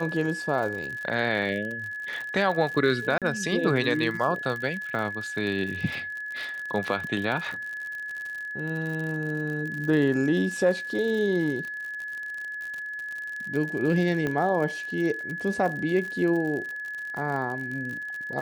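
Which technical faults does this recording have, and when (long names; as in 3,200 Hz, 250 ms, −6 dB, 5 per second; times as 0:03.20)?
surface crackle 62 per second −32 dBFS
whistle 1,700 Hz −32 dBFS
0:03.18–0:03.22: drop-out 37 ms
0:14.27: click −16 dBFS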